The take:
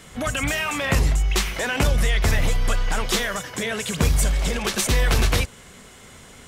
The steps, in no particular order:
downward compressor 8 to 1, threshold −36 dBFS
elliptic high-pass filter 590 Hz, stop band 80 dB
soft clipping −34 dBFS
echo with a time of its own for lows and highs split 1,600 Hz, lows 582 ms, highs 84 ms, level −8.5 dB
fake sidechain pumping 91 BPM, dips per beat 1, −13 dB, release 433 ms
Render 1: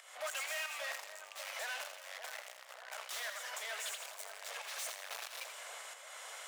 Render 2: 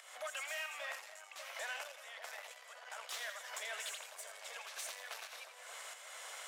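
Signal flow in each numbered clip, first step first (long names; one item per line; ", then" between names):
soft clipping, then fake sidechain pumping, then echo with a time of its own for lows and highs, then downward compressor, then elliptic high-pass filter
downward compressor, then fake sidechain pumping, then echo with a time of its own for lows and highs, then soft clipping, then elliptic high-pass filter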